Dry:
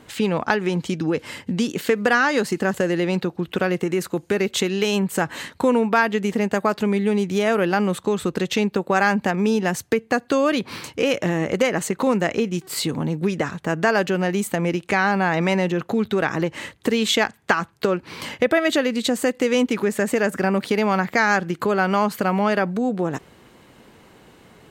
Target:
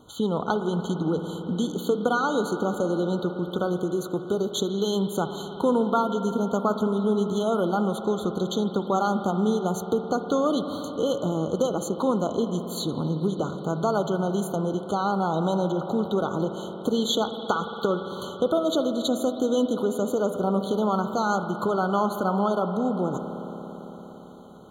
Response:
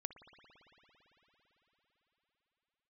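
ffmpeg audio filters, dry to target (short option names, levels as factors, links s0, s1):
-filter_complex "[1:a]atrim=start_sample=2205[s0];[0:a][s0]afir=irnorm=-1:irlink=0,afftfilt=real='re*eq(mod(floor(b*sr/1024/1500),2),0)':imag='im*eq(mod(floor(b*sr/1024/1500),2),0)':win_size=1024:overlap=0.75"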